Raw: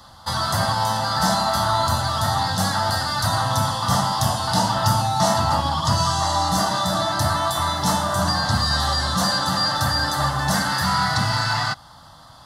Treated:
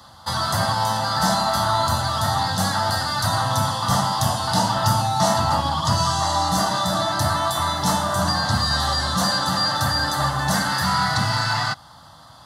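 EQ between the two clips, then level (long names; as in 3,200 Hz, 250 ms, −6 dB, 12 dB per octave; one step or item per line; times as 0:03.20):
high-pass filter 63 Hz
notch filter 5,300 Hz, Q 29
0.0 dB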